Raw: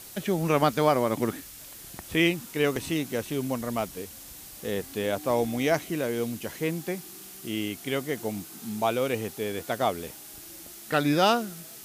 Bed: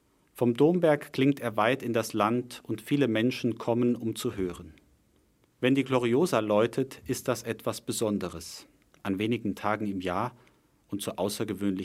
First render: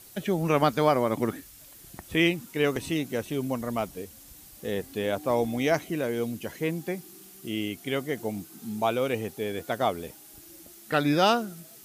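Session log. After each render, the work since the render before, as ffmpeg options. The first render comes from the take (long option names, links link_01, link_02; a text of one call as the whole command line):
ffmpeg -i in.wav -af "afftdn=noise_reduction=7:noise_floor=-45" out.wav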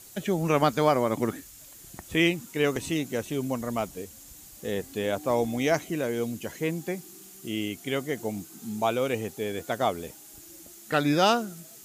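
ffmpeg -i in.wav -af "equalizer=frequency=7000:width_type=o:width=0.36:gain=7.5" out.wav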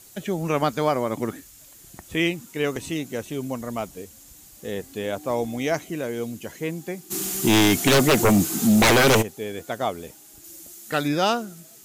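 ffmpeg -i in.wav -filter_complex "[0:a]asplit=3[link_01][link_02][link_03];[link_01]afade=type=out:start_time=7.1:duration=0.02[link_04];[link_02]aeval=exprs='0.237*sin(PI/2*6.31*val(0)/0.237)':channel_layout=same,afade=type=in:start_time=7.1:duration=0.02,afade=type=out:start_time=9.21:duration=0.02[link_05];[link_03]afade=type=in:start_time=9.21:duration=0.02[link_06];[link_04][link_05][link_06]amix=inputs=3:normalize=0,asettb=1/sr,asplit=3[link_07][link_08][link_09];[link_07]atrim=end=10.444[link_10];[link_08]atrim=start=10.44:end=11.08,asetpts=PTS-STARTPTS,afade=type=in:duration=0.004:curve=qsin,afade=type=out:start_time=0.636:duration=0.004:curve=qsin,highshelf=frequency=4300:gain=6.5[link_11];[link_09]atrim=start=11.076[link_12];[link_10][link_11]acrossfade=duration=0.004:curve1=hsin:curve2=qsin[link_13];[link_13][link_12]acrossfade=duration=0.004:curve1=qsin:curve2=hsin" out.wav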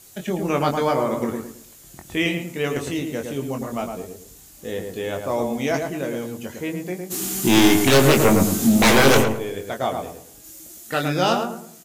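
ffmpeg -i in.wav -filter_complex "[0:a]asplit=2[link_01][link_02];[link_02]adelay=22,volume=-5.5dB[link_03];[link_01][link_03]amix=inputs=2:normalize=0,asplit=2[link_04][link_05];[link_05]adelay=109,lowpass=frequency=1500:poles=1,volume=-4dB,asplit=2[link_06][link_07];[link_07]adelay=109,lowpass=frequency=1500:poles=1,volume=0.34,asplit=2[link_08][link_09];[link_09]adelay=109,lowpass=frequency=1500:poles=1,volume=0.34,asplit=2[link_10][link_11];[link_11]adelay=109,lowpass=frequency=1500:poles=1,volume=0.34[link_12];[link_06][link_08][link_10][link_12]amix=inputs=4:normalize=0[link_13];[link_04][link_13]amix=inputs=2:normalize=0" out.wav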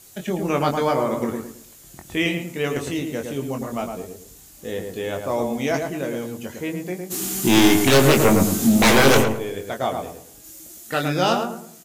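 ffmpeg -i in.wav -af anull out.wav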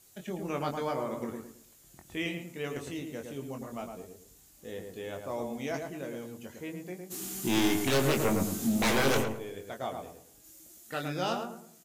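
ffmpeg -i in.wav -af "volume=-12dB" out.wav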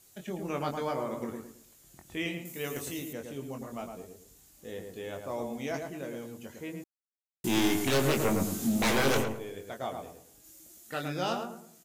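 ffmpeg -i in.wav -filter_complex "[0:a]asettb=1/sr,asplit=3[link_01][link_02][link_03];[link_01]atrim=end=2.454[link_04];[link_02]atrim=start=2.45:end=3.13,asetpts=PTS-STARTPTS,afade=type=in:duration=0.004:curve=qsin,afade=type=out:start_time=0.676:duration=0.004:curve=qsin,aemphasis=mode=production:type=50fm[link_05];[link_03]atrim=start=3.126[link_06];[link_04][link_05]acrossfade=duration=0.004:curve1=hsin:curve2=qsin[link_07];[link_07][link_06]acrossfade=duration=0.004:curve1=qsin:curve2=hsin,asplit=3[link_08][link_09][link_10];[link_08]atrim=end=6.84,asetpts=PTS-STARTPTS,afade=type=out:start_time=6.836:duration=0.004:curve=hsin[link_11];[link_09]atrim=start=6.84:end=7.44,asetpts=PTS-STARTPTS,volume=0[link_12];[link_10]atrim=start=7.44,asetpts=PTS-STARTPTS,afade=type=in:duration=0.004:curve=hsin[link_13];[link_11][link_12][link_13]concat=n=3:v=0:a=1" out.wav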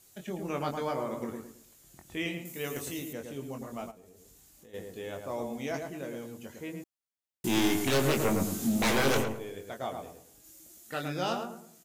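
ffmpeg -i in.wav -filter_complex "[0:a]asplit=3[link_01][link_02][link_03];[link_01]afade=type=out:start_time=3.9:duration=0.02[link_04];[link_02]acompressor=threshold=-52dB:ratio=5:attack=3.2:release=140:knee=1:detection=peak,afade=type=in:start_time=3.9:duration=0.02,afade=type=out:start_time=4.73:duration=0.02[link_05];[link_03]afade=type=in:start_time=4.73:duration=0.02[link_06];[link_04][link_05][link_06]amix=inputs=3:normalize=0" out.wav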